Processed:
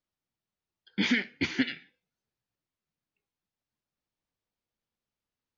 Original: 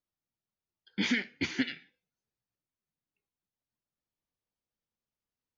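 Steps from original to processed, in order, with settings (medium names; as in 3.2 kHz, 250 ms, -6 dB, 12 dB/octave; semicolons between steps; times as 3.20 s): low-pass 5.6 kHz; trim +3 dB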